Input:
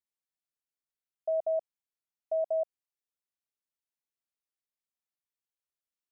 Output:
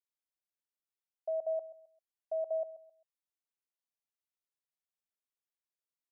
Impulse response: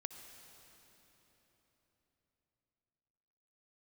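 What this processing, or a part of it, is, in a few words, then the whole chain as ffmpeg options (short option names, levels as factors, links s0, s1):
filter by subtraction: -filter_complex "[0:a]aecho=1:1:132|264|396:0.168|0.0504|0.0151,asplit=2[s0][s1];[s1]lowpass=450,volume=-1[s2];[s0][s2]amix=inputs=2:normalize=0,volume=0.447"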